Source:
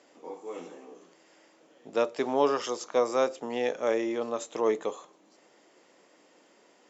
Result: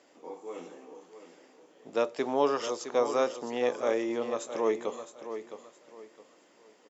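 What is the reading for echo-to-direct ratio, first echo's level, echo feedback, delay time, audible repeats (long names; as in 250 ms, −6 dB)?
−10.0 dB, −10.5 dB, 28%, 663 ms, 3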